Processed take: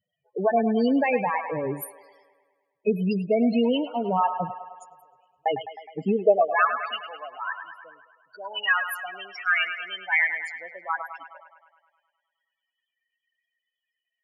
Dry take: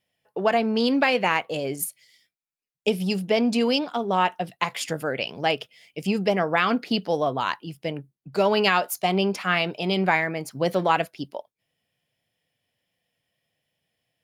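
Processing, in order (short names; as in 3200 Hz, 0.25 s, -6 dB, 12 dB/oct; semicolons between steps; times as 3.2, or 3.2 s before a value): loudest bins only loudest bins 8; 4.54–5.46 inverse Chebyshev band-stop 100–4200 Hz, stop band 40 dB; high-pass sweep 76 Hz -> 1700 Hz, 5.66–6.71; on a send: band-limited delay 0.104 s, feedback 63%, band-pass 1300 Hz, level -8.5 dB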